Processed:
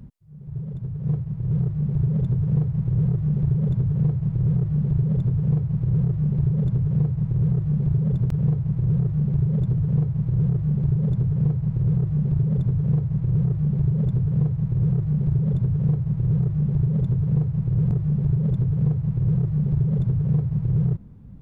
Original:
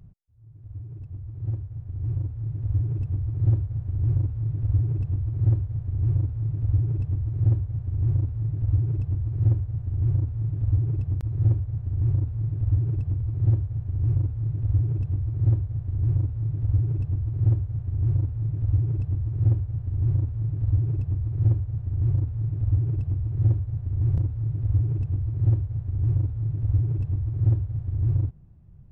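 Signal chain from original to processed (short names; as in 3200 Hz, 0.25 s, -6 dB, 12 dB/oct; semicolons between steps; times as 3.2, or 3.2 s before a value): compressor, threshold -24 dBFS, peak gain reduction 8.5 dB; speed mistake 33 rpm record played at 45 rpm; gain +6.5 dB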